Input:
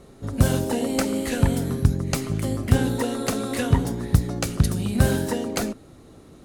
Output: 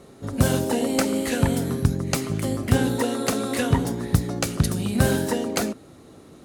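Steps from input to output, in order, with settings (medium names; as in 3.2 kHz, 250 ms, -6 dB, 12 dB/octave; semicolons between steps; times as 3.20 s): high-pass 130 Hz 6 dB/octave; trim +2 dB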